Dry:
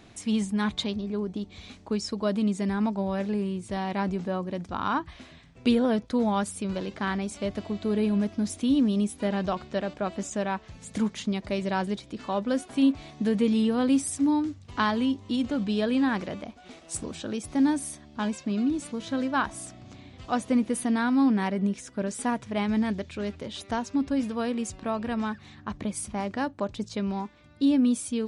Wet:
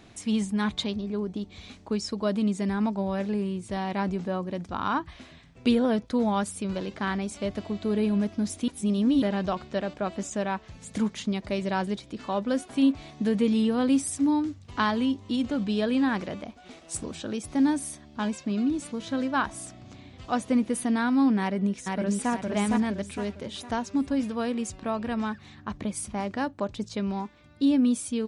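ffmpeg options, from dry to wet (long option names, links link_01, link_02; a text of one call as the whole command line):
ffmpeg -i in.wav -filter_complex "[0:a]asplit=2[link_01][link_02];[link_02]afade=type=in:start_time=21.4:duration=0.01,afade=type=out:start_time=22.31:duration=0.01,aecho=0:1:460|920|1380|1840|2300:0.749894|0.299958|0.119983|0.0479932|0.0191973[link_03];[link_01][link_03]amix=inputs=2:normalize=0,asplit=3[link_04][link_05][link_06];[link_04]atrim=end=8.682[link_07];[link_05]atrim=start=8.678:end=9.222,asetpts=PTS-STARTPTS,areverse[link_08];[link_06]atrim=start=9.218[link_09];[link_07][link_08]acrossfade=duration=0.004:curve1=hsin:curve2=hsin[link_10];[link_10][link_09]acrossfade=duration=0.004:curve1=hsin:curve2=hsin" out.wav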